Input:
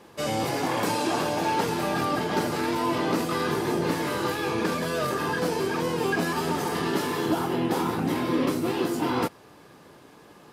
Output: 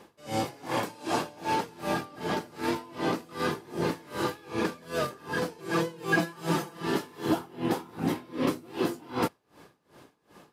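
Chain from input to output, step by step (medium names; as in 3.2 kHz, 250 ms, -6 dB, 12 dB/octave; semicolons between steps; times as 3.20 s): 5.58–6.86 s: comb 6 ms, depth 92%; logarithmic tremolo 2.6 Hz, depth 24 dB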